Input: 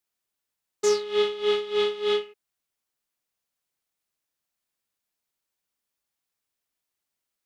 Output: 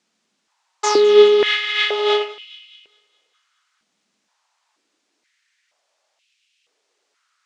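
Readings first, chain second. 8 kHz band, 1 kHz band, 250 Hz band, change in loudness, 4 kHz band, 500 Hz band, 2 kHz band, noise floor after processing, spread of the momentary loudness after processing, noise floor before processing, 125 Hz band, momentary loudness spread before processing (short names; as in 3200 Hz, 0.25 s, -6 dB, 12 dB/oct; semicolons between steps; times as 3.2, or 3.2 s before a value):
+6.5 dB, +12.0 dB, +10.0 dB, +10.0 dB, +11.0 dB, +10.0 dB, +15.0 dB, -72 dBFS, 11 LU, -85 dBFS, n/a, 4 LU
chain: LPF 7200 Hz 24 dB/oct; in parallel at -1 dB: negative-ratio compressor -34 dBFS, ratio -1; on the sum: thinning echo 0.207 s, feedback 56%, high-pass 980 Hz, level -19 dB; stepped high-pass 2.1 Hz 210–2700 Hz; gain +7 dB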